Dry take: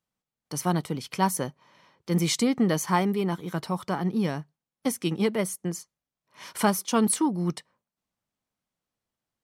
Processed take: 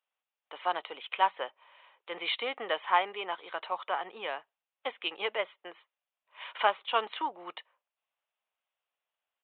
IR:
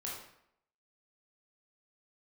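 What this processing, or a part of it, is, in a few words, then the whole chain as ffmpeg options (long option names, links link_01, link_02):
musical greeting card: -af "aresample=8000,aresample=44100,highpass=frequency=570:width=0.5412,highpass=frequency=570:width=1.3066,equalizer=frequency=2700:width_type=o:width=0.34:gain=6"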